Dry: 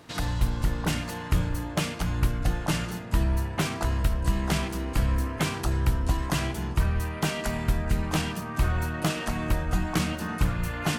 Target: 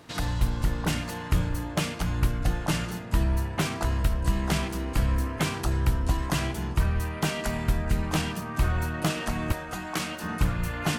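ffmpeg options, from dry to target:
-filter_complex "[0:a]asettb=1/sr,asplit=3[a][b][c];[a]atrim=end=9.524[d];[b]atrim=start=9.52:end=10.24,asetpts=PTS-STARTPTS,afade=t=in:d=0.004:c=qsin,afade=t=out:st=0.716:d=0.004:c=qsin,highpass=f=460:p=1[e];[c]atrim=start=10.236[f];[d][e]acrossfade=d=0.004:c1=hsin:c2=qsin[g];[g][f]acrossfade=d=0.004:c1=qsin:c2=hsin"

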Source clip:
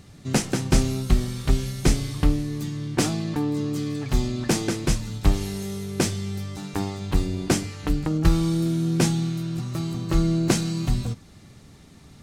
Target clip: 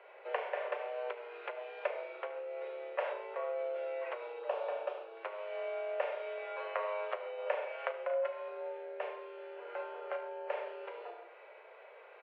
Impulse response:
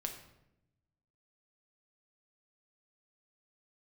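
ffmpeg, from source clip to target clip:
-filter_complex "[0:a]asettb=1/sr,asplit=3[a][b][c];[a]atrim=end=8.064[d];[b]atrim=start=8.06:end=8.48,asetpts=PTS-STARTPTS,afade=t=in:d=0.004:c=qsin,afade=t=out:st=0.416:d=0.004:c=qsin,aecho=1:1:2.6:0.65,atrim=end_sample=18522[e];[c]atrim=start=8.476[f];[d][e]acrossfade=d=0.004:c1=hsin:c2=qsin[g];[g][f]acrossfade=d=0.004:c1=qsin:c2=hsin,aecho=1:1:36|74:0.501|0.398[h];[1:a]atrim=start_sample=2205,atrim=end_sample=6174[i];[h][i]afir=irnorm=-1:irlink=0,acompressor=threshold=-29dB:ratio=12,highpass=f=300:t=q:w=0.5412,highpass=f=300:t=q:w=1.307,lowpass=f=2.4k:t=q:w=0.5176,lowpass=f=2.4k:t=q:w=0.7071,lowpass=f=2.4k:t=q:w=1.932,afreqshift=230,asettb=1/sr,asplit=3[j][k][l];[j]atrim=end=4.394[m];[k]atrim=start=4.39:end=5.17,asetpts=PTS-STARTPTS,afade=t=in:d=0.004:c=qsin,afade=t=out:st=0.776:d=0.004:c=qsin,equalizer=f=2k:t=o:w=0.49:g=-13.5[n];[l]atrim=start=5.166[o];[m][n]acrossfade=d=0.004:c1=hsin:c2=qsin[p];[p][o]acrossfade=d=0.004:c1=qsin:c2=hsin,volume=1.5dB"

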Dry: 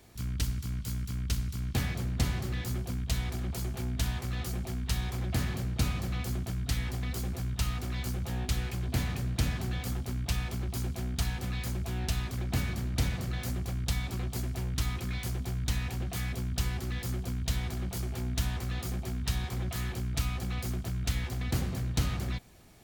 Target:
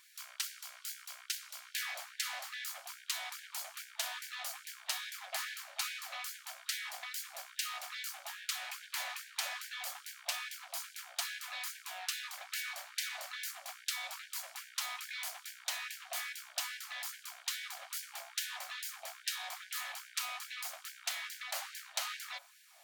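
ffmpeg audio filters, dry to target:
-af "bandreject=f=51.17:t=h:w=4,bandreject=f=102.34:t=h:w=4,bandreject=f=153.51:t=h:w=4,bandreject=f=204.68:t=h:w=4,bandreject=f=255.85:t=h:w=4,bandreject=f=307.02:t=h:w=4,bandreject=f=358.19:t=h:w=4,bandreject=f=409.36:t=h:w=4,bandreject=f=460.53:t=h:w=4,bandreject=f=511.7:t=h:w=4,bandreject=f=562.87:t=h:w=4,bandreject=f=614.04:t=h:w=4,bandreject=f=665.21:t=h:w=4,bandreject=f=716.38:t=h:w=4,bandreject=f=767.55:t=h:w=4,bandreject=f=818.72:t=h:w=4,bandreject=f=869.89:t=h:w=4,bandreject=f=921.06:t=h:w=4,bandreject=f=972.23:t=h:w=4,bandreject=f=1.0234k:t=h:w=4,bandreject=f=1.07457k:t=h:w=4,bandreject=f=1.12574k:t=h:w=4,bandreject=f=1.17691k:t=h:w=4,bandreject=f=1.22808k:t=h:w=4,bandreject=f=1.27925k:t=h:w=4,bandreject=f=1.33042k:t=h:w=4,bandreject=f=1.38159k:t=h:w=4,bandreject=f=1.43276k:t=h:w=4,bandreject=f=1.48393k:t=h:w=4,bandreject=f=1.5351k:t=h:w=4,bandreject=f=1.58627k:t=h:w=4,bandreject=f=1.63744k:t=h:w=4,afftfilt=real='re*gte(b*sr/1024,530*pow(1500/530,0.5+0.5*sin(2*PI*2.4*pts/sr)))':imag='im*gte(b*sr/1024,530*pow(1500/530,0.5+0.5*sin(2*PI*2.4*pts/sr)))':win_size=1024:overlap=0.75,volume=1dB"

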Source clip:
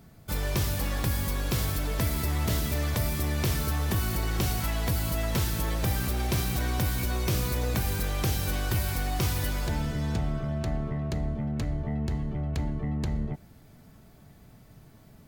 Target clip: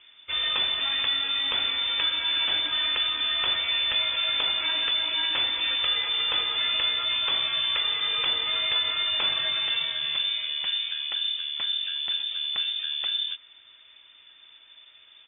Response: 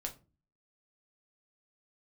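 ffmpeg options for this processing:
-filter_complex "[0:a]firequalizer=gain_entry='entry(120,0);entry(180,-10);entry(870,4)':delay=0.05:min_phase=1,lowpass=f=3.1k:t=q:w=0.5098,lowpass=f=3.1k:t=q:w=0.6013,lowpass=f=3.1k:t=q:w=0.9,lowpass=f=3.1k:t=q:w=2.563,afreqshift=-3600,asplit=2[a][b];[b]asetrate=37084,aresample=44100,atempo=1.18921,volume=-16dB[c];[a][c]amix=inputs=2:normalize=0,volume=1.5dB"

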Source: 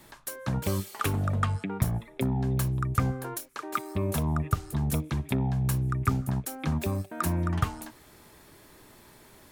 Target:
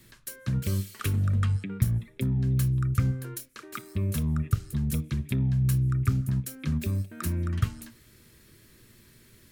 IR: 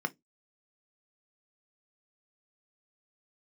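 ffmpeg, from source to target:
-filter_complex "[0:a]equalizer=f=810:t=o:w=1:g=-12,asplit=2[a][b];[1:a]atrim=start_sample=2205,asetrate=29547,aresample=44100[c];[b][c]afir=irnorm=-1:irlink=0,volume=-14dB[d];[a][d]amix=inputs=2:normalize=0"

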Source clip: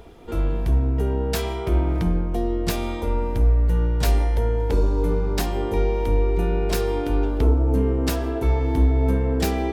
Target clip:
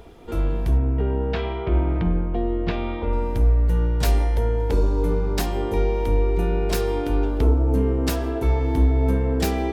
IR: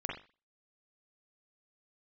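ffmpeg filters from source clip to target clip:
-filter_complex "[0:a]asettb=1/sr,asplit=3[a][b][c];[a]atrim=end=0.774[d];[b]atrim=start=0.77:end=3.13,asetpts=PTS-STARTPTS,afade=t=in:d=0.004:c=qsin,afade=t=out:st=2.356:d=0.004:c=qsin,lowpass=f=3.3k:w=0.5412,lowpass=f=3.3k:w=1.3066[e];[c]atrim=start=3.126[f];[d][e]acrossfade=d=0.004:c1=hsin:c2=qsin[g];[g][f]acrossfade=d=0.004:c1=qsin:c2=hsin"

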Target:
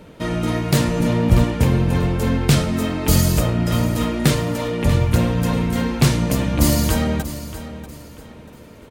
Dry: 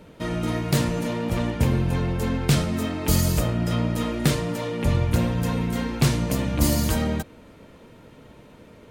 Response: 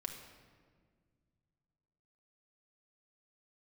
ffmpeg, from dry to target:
-filter_complex "[0:a]asettb=1/sr,asplit=3[a][b][c];[a]atrim=end=1.004[d];[b]atrim=start=1:end=1.44,asetpts=PTS-STARTPTS,afade=t=in:d=0.004:c=qsin,afade=t=out:st=0.436:d=0.004:c=qsin,lowshelf=f=170:g=12[e];[c]atrim=start=1.436[f];[d][e]acrossfade=d=0.004:c1=hsin:c2=qsin[g];[g][f]acrossfade=d=0.004:c1=qsin:c2=hsin,asplit=2[h][i];[i]aecho=0:1:639|1278|1917:0.211|0.0655|0.0203[j];[h][j]amix=inputs=2:normalize=0,volume=4.5dB"

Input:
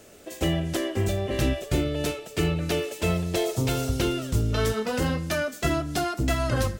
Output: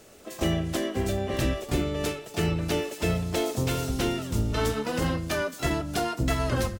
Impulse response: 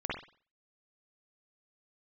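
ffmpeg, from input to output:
-filter_complex "[0:a]asplit=3[a][b][c];[b]asetrate=29433,aresample=44100,atempo=1.49831,volume=-8dB[d];[c]asetrate=88200,aresample=44100,atempo=0.5,volume=-13dB[e];[a][d][e]amix=inputs=3:normalize=0,bandreject=f=50:t=h:w=6,bandreject=f=100:t=h:w=6,bandreject=f=150:t=h:w=6,volume=-2dB"

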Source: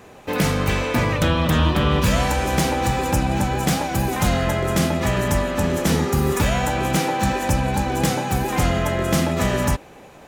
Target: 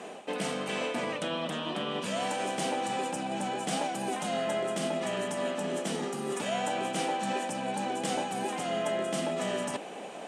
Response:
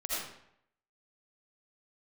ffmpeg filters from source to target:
-af "areverse,acompressor=threshold=-30dB:ratio=8,areverse,highpass=f=200:w=0.5412,highpass=f=200:w=1.3066,equalizer=f=200:t=q:w=4:g=4,equalizer=f=440:t=q:w=4:g=3,equalizer=f=680:t=q:w=4:g=8,equalizer=f=3k:t=q:w=4:g=7,equalizer=f=8.6k:t=q:w=4:g=9,lowpass=f=10k:w=0.5412,lowpass=f=10k:w=1.3066"

